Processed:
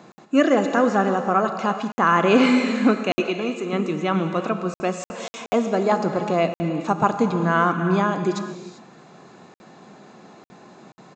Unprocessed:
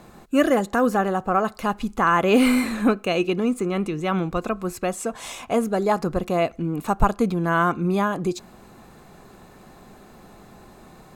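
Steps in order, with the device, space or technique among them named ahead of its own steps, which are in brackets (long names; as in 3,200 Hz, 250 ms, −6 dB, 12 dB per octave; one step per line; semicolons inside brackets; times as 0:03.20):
reverb whose tail is shaped and stops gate 420 ms flat, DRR 6.5 dB
0:03.20–0:03.73: high-pass filter 430 Hz 6 dB per octave
call with lost packets (high-pass filter 140 Hz 24 dB per octave; downsampling to 16,000 Hz; dropped packets of 60 ms random)
level +1 dB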